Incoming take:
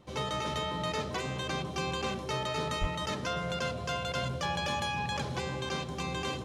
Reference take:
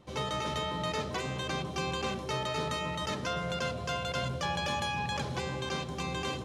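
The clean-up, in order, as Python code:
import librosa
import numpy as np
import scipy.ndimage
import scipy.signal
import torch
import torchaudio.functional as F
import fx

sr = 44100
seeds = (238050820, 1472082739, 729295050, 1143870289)

y = fx.fix_declip(x, sr, threshold_db=-22.5)
y = fx.highpass(y, sr, hz=140.0, slope=24, at=(2.8, 2.92), fade=0.02)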